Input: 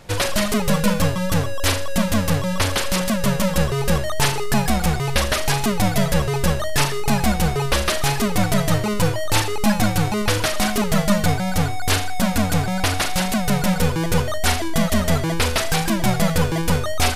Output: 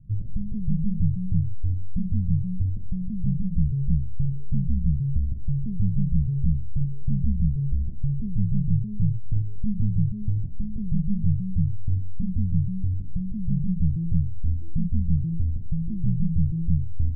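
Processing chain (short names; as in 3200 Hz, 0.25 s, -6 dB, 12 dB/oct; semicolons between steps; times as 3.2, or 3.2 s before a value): inverse Chebyshev low-pass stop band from 990 Hz, stop band 80 dB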